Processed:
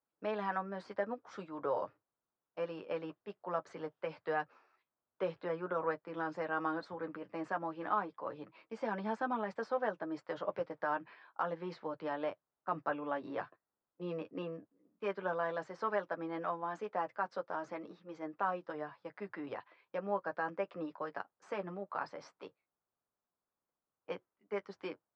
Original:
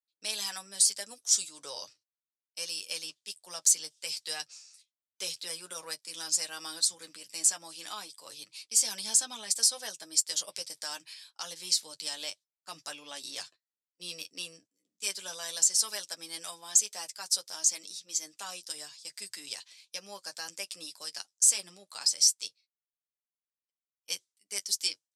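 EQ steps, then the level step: LPF 1300 Hz 24 dB/oct; dynamic EQ 820 Hz, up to -3 dB, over -55 dBFS, Q 1.4; low shelf 63 Hz -8.5 dB; +13.5 dB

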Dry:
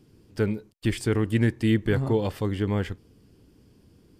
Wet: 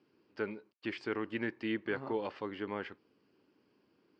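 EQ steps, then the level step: air absorption 63 m; speaker cabinet 450–4300 Hz, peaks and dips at 470 Hz -5 dB, 700 Hz -5 dB, 1900 Hz -3 dB, 3500 Hz -9 dB; -3.0 dB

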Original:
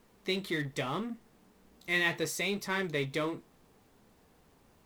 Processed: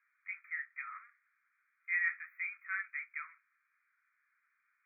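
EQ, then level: steep high-pass 1300 Hz 72 dB/oct; brick-wall FIR band-stop 2500–13000 Hz; air absorption 190 m; 0.0 dB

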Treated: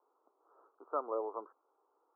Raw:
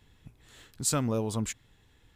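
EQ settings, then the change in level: steep high-pass 350 Hz 48 dB/oct; steep low-pass 1300 Hz 96 dB/oct; tilt shelf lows -6.5 dB; 0.0 dB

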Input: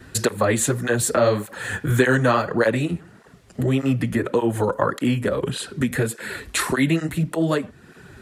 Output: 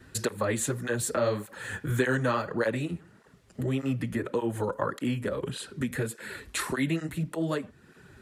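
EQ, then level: notch 710 Hz, Q 14; -8.5 dB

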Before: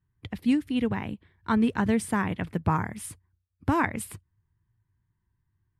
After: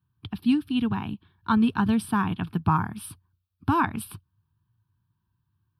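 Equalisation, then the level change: HPF 98 Hz; fixed phaser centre 2000 Hz, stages 6; +4.5 dB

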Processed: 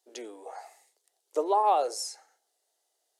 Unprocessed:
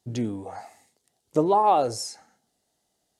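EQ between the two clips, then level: steep high-pass 380 Hz 36 dB/oct; high shelf 6800 Hz +4.5 dB; -4.0 dB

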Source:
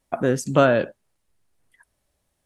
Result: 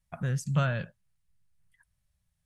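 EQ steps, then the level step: EQ curve 170 Hz 0 dB, 290 Hz -25 dB, 1700 Hz -9 dB; 0.0 dB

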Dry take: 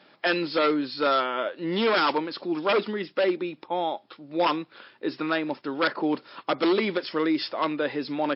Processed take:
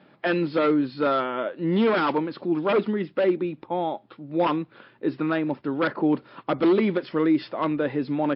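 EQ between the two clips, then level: air absorption 300 m; low shelf 77 Hz +9.5 dB; low shelf 230 Hz +11.5 dB; 0.0 dB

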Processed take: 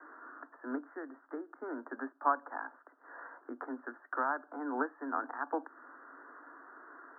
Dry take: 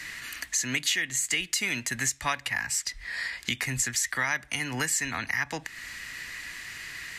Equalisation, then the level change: steep high-pass 260 Hz 96 dB/oct; steep low-pass 1500 Hz 96 dB/oct; +1.5 dB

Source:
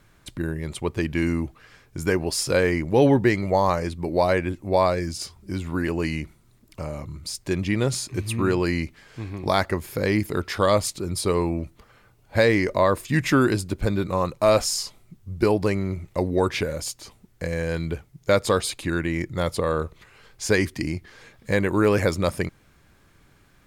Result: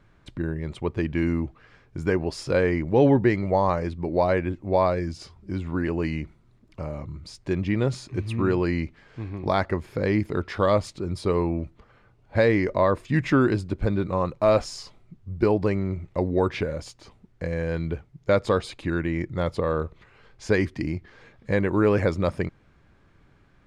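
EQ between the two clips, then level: tape spacing loss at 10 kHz 20 dB; 0.0 dB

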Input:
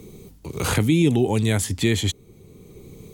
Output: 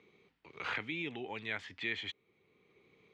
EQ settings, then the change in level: band-pass 2100 Hz, Q 1.5; air absorption 220 m; -3.5 dB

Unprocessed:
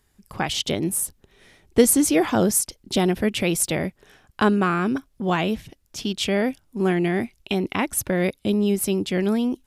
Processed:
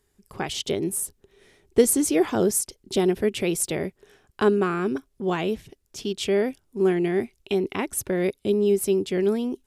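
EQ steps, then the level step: bell 400 Hz +10.5 dB 0.38 oct; bell 8100 Hz +3 dB 0.91 oct; -5.5 dB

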